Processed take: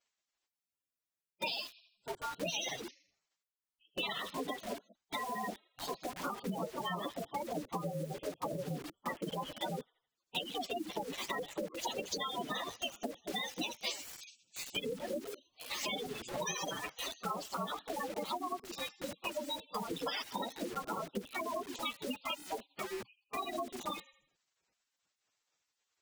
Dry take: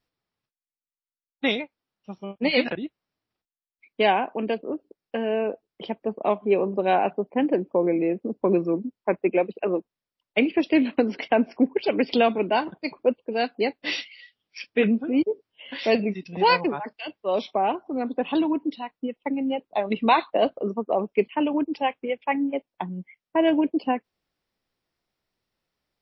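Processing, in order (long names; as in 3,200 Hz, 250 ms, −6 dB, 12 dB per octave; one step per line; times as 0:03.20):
partials spread apart or drawn together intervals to 111%
delay with a high-pass on its return 82 ms, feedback 41%, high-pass 4,800 Hz, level −3.5 dB
gate on every frequency bin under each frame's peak −20 dB strong
in parallel at −9.5 dB: bit reduction 7 bits
on the sum: dynamic equaliser 310 Hz, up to +4 dB, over −35 dBFS, Q 1.1
brickwall limiter −15 dBFS, peak gain reduction 9.5 dB
gate on every frequency bin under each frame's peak −15 dB weak
downward compressor 6 to 1, threshold −46 dBFS, peak gain reduction 13.5 dB
level +10.5 dB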